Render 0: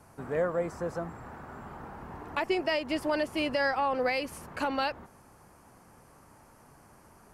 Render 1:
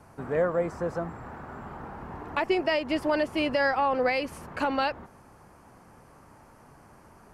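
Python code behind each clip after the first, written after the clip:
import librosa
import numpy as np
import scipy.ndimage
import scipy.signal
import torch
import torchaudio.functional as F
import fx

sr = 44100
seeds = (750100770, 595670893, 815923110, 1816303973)

y = fx.high_shelf(x, sr, hz=5600.0, db=-8.5)
y = y * 10.0 ** (3.5 / 20.0)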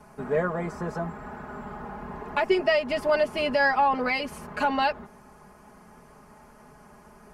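y = x + 0.86 * np.pad(x, (int(4.8 * sr / 1000.0), 0))[:len(x)]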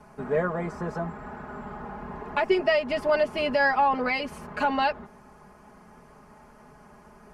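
y = fx.high_shelf(x, sr, hz=7900.0, db=-8.0)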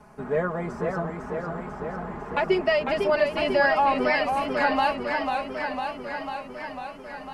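y = fx.echo_warbled(x, sr, ms=499, feedback_pct=71, rate_hz=2.8, cents=124, wet_db=-5.0)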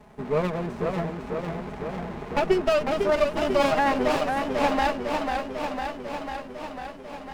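y = fx.running_max(x, sr, window=17)
y = y * 10.0 ** (1.0 / 20.0)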